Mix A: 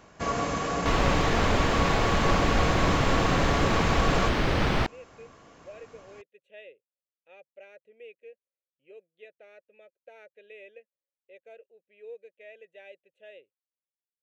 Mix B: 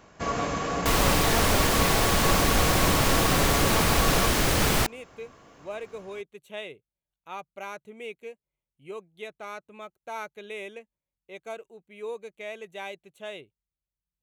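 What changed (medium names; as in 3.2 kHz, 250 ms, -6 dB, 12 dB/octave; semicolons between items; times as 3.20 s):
speech: remove vowel filter e; second sound: remove distance through air 220 m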